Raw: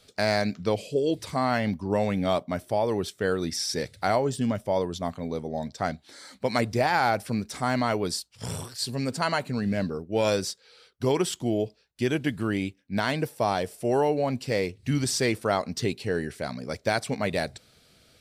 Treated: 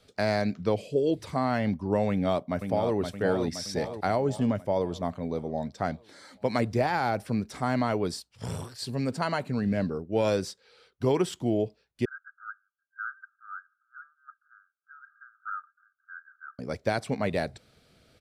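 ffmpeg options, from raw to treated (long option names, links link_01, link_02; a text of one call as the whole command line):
ffmpeg -i in.wav -filter_complex "[0:a]asplit=2[link_01][link_02];[link_02]afade=type=in:start_time=2.09:duration=0.01,afade=type=out:start_time=2.96:duration=0.01,aecho=0:1:520|1040|1560|2080|2600|3120|3640:0.473151|0.260233|0.143128|0.0787205|0.0432963|0.023813|0.0130971[link_03];[link_01][link_03]amix=inputs=2:normalize=0,asettb=1/sr,asplit=3[link_04][link_05][link_06];[link_04]atrim=end=12.054[link_07];[link_05]atrim=start=12.05:end=16.59,asetpts=PTS-STARTPTS,afade=type=in:duration=0.004:curve=qsin,afade=type=out:start_time=4.536:duration=0.004:curve=qsin,asuperpass=centerf=1400:order=20:qfactor=3.3[link_08];[link_06]atrim=start=16.586[link_09];[link_07][link_08]acrossfade=duration=0.004:curve1=hsin:curve2=qsin[link_10];[link_10][link_09]acrossfade=duration=0.004:curve1=qsin:curve2=hsin,highshelf=frequency=2800:gain=-9,acrossover=split=470|3000[link_11][link_12][link_13];[link_12]acompressor=threshold=-25dB:ratio=6[link_14];[link_11][link_14][link_13]amix=inputs=3:normalize=0" out.wav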